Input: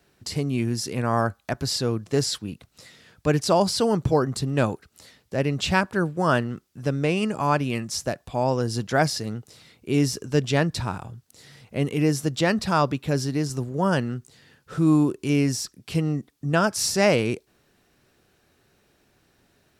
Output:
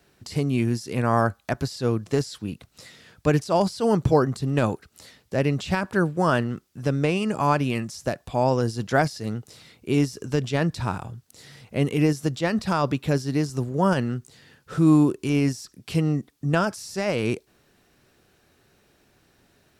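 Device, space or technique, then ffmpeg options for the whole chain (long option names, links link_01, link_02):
de-esser from a sidechain: -filter_complex "[0:a]asplit=2[link_01][link_02];[link_02]highpass=5500,apad=whole_len=872832[link_03];[link_01][link_03]sidechaincompress=threshold=-39dB:ratio=10:attack=2.2:release=76,volume=2dB"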